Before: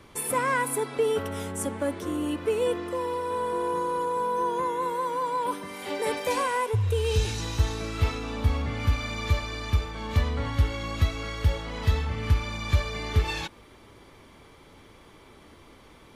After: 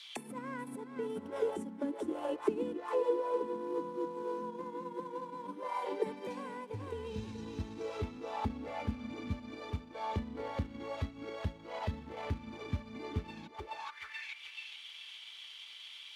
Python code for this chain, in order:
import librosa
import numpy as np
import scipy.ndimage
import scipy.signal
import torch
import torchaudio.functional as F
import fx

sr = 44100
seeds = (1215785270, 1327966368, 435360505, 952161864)

p1 = fx.peak_eq(x, sr, hz=870.0, db=5.5, octaves=0.21)
p2 = fx.quant_companded(p1, sr, bits=4)
p3 = p1 + (p2 * librosa.db_to_amplitude(-7.5))
p4 = fx.tilt_shelf(p3, sr, db=-10.0, hz=1400.0)
p5 = p4 + fx.echo_feedback(p4, sr, ms=429, feedback_pct=39, wet_db=-8.0, dry=0)
p6 = fx.transient(p5, sr, attack_db=3, sustain_db=-6)
p7 = fx.auto_wah(p6, sr, base_hz=220.0, top_hz=3900.0, q=4.5, full_db=-22.5, direction='down')
y = p7 * librosa.db_to_amplitude(6.0)